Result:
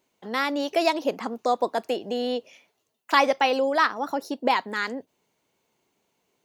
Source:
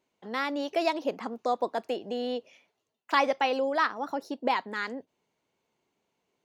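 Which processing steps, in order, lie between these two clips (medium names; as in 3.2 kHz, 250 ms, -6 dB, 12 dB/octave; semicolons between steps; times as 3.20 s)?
treble shelf 7 kHz +9 dB; trim +4.5 dB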